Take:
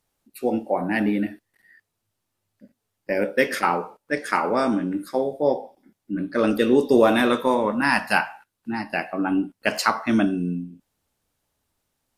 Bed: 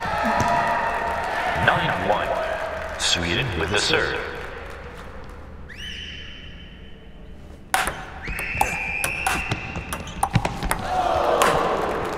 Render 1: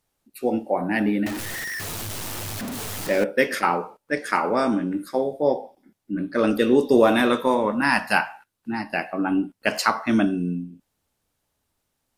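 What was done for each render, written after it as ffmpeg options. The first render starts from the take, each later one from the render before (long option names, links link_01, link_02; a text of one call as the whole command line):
ffmpeg -i in.wav -filter_complex "[0:a]asettb=1/sr,asplit=3[link_01][link_02][link_03];[link_01]atrim=end=1.264[link_04];[link_02]atrim=start=1.26:end=3.24,asetpts=PTS-STARTPTS,afade=type=in:duration=0.004:curve=qsin,afade=type=out:start_time=1.976:duration=0.004:curve=qsin,aeval=exprs='val(0)+0.5*0.0562*sgn(val(0))':channel_layout=same[link_05];[link_03]atrim=start=3.236[link_06];[link_04][link_05]acrossfade=duration=0.004:curve1=hsin:curve2=qsin[link_07];[link_07][link_06]acrossfade=duration=0.004:curve1=qsin:curve2=hsin" out.wav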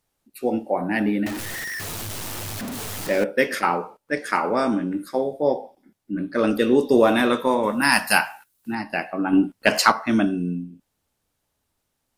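ffmpeg -i in.wav -filter_complex "[0:a]asettb=1/sr,asplit=3[link_01][link_02][link_03];[link_01]atrim=end=7.634[link_04];[link_02]atrim=start=7.63:end=8.75,asetpts=PTS-STARTPTS,afade=type=in:duration=0.004:curve=qsin,afade=type=out:start_time=1.116:duration=0.004:curve=qsin,aemphasis=mode=production:type=75kf[link_05];[link_03]atrim=start=8.746[link_06];[link_04][link_05]acrossfade=duration=0.004:curve1=hsin:curve2=qsin[link_07];[link_07][link_06]acrossfade=duration=0.004:curve1=qsin:curve2=hsin,asettb=1/sr,asplit=3[link_08][link_09][link_10];[link_08]atrim=end=9.334[link_11];[link_09]atrim=start=9.33:end=9.92,asetpts=PTS-STARTPTS,afade=type=in:duration=0.004:curve=qsin,afade=type=out:start_time=0.586:duration=0.004:curve=qsin,acontrast=42[link_12];[link_10]atrim=start=9.916[link_13];[link_11][link_12]acrossfade=duration=0.004:curve1=hsin:curve2=qsin[link_14];[link_14][link_13]acrossfade=duration=0.004:curve1=qsin:curve2=hsin" out.wav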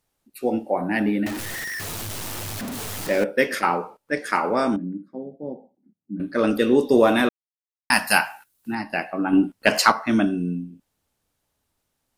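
ffmpeg -i in.wav -filter_complex "[0:a]asettb=1/sr,asplit=3[link_01][link_02][link_03];[link_01]atrim=end=4.764[link_04];[link_02]atrim=start=4.76:end=6.2,asetpts=PTS-STARTPTS,afade=type=in:duration=0.004:curve=qsin,afade=type=out:start_time=1.436:duration=0.004:curve=qsin,bandpass=frequency=200:width_type=q:width=2.3[link_05];[link_03]atrim=start=6.196[link_06];[link_04][link_05]acrossfade=duration=0.004:curve1=hsin:curve2=qsin[link_07];[link_07][link_06]acrossfade=duration=0.004:curve1=qsin:curve2=hsin,asplit=3[link_08][link_09][link_10];[link_08]atrim=end=7.29,asetpts=PTS-STARTPTS,afade=type=out:start_time=7.286:duration=0.004:curve=hsin[link_11];[link_09]atrim=start=7.29:end=7.9,asetpts=PTS-STARTPTS,volume=0[link_12];[link_10]atrim=start=7.9,asetpts=PTS-STARTPTS,afade=type=in:duration=0.004:curve=hsin[link_13];[link_11][link_12][link_13]concat=n=3:v=0:a=1" out.wav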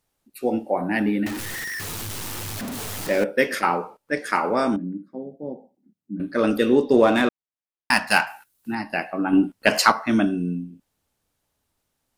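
ffmpeg -i in.wav -filter_complex "[0:a]asettb=1/sr,asplit=3[link_01][link_02][link_03];[link_01]atrim=end=1.004[link_04];[link_02]atrim=start=1:end=2.56,asetpts=PTS-STARTPTS,afade=type=in:duration=0.004:curve=qsin,afade=type=out:start_time=1.556:duration=0.004:curve=qsin,equalizer=frequency=640:width_type=o:width=0.33:gain=-6.5[link_05];[link_03]atrim=start=2.556[link_06];[link_04][link_05]acrossfade=duration=0.004:curve1=hsin:curve2=qsin[link_07];[link_07][link_06]acrossfade=duration=0.004:curve1=qsin:curve2=hsin,asettb=1/sr,asplit=3[link_08][link_09][link_10];[link_08]atrim=end=6.754[link_11];[link_09]atrim=start=6.75:end=8.27,asetpts=PTS-STARTPTS,afade=type=in:duration=0.004:curve=qsin,afade=type=out:start_time=1.516:duration=0.004:curve=qsin,adynamicsmooth=sensitivity=3.5:basefreq=3600[link_12];[link_10]atrim=start=8.266[link_13];[link_11][link_12]acrossfade=duration=0.004:curve1=hsin:curve2=qsin[link_14];[link_14][link_13]acrossfade=duration=0.004:curve1=qsin:curve2=hsin" out.wav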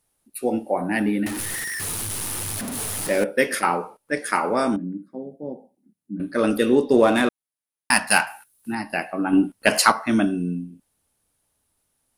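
ffmpeg -i in.wav -af "equalizer=frequency=10000:width=3:gain=13.5" out.wav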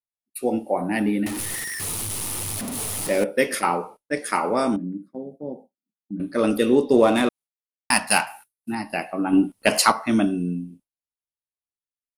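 ffmpeg -i in.wav -af "agate=range=-33dB:threshold=-38dB:ratio=3:detection=peak,equalizer=frequency=1600:width_type=o:width=0.37:gain=-6" out.wav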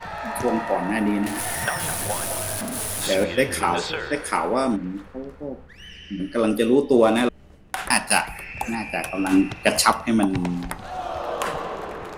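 ffmpeg -i in.wav -i bed.wav -filter_complex "[1:a]volume=-8.5dB[link_01];[0:a][link_01]amix=inputs=2:normalize=0" out.wav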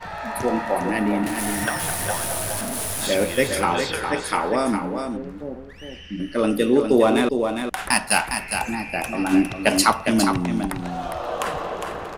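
ffmpeg -i in.wav -af "aecho=1:1:407:0.473" out.wav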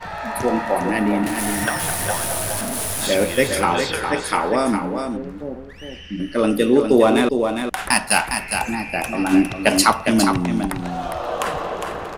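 ffmpeg -i in.wav -af "volume=2.5dB,alimiter=limit=-1dB:level=0:latency=1" out.wav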